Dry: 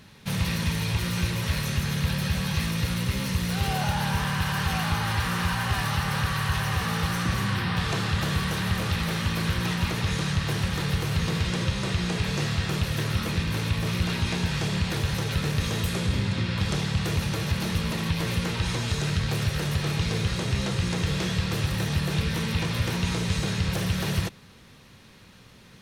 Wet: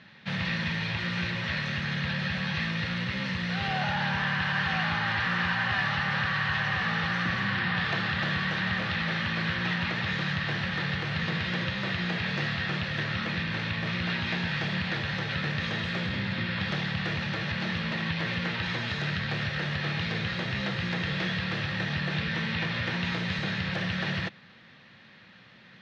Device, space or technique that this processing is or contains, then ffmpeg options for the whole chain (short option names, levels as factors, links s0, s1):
kitchen radio: -af "highpass=170,equalizer=f=280:t=q:w=4:g=-5,equalizer=f=420:t=q:w=4:g=-9,equalizer=f=1000:t=q:w=4:g=-4,equalizer=f=1800:t=q:w=4:g=7,lowpass=f=4100:w=0.5412,lowpass=f=4100:w=1.3066"